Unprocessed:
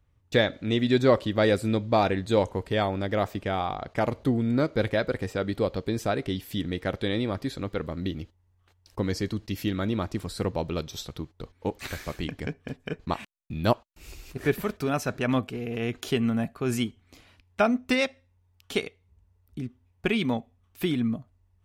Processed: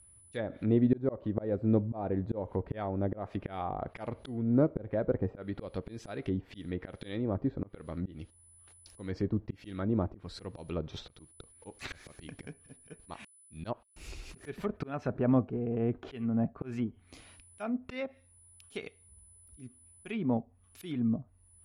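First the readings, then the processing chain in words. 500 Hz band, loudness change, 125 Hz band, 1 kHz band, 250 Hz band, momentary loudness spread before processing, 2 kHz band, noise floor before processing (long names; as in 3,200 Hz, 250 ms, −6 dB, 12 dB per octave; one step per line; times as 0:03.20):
−8.5 dB, −6.0 dB, −4.5 dB, −11.0 dB, −4.5 dB, 13 LU, −15.5 dB, −66 dBFS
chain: volume swells 330 ms
steady tone 10,000 Hz −56 dBFS
treble cut that deepens with the level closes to 760 Hz, closed at −29 dBFS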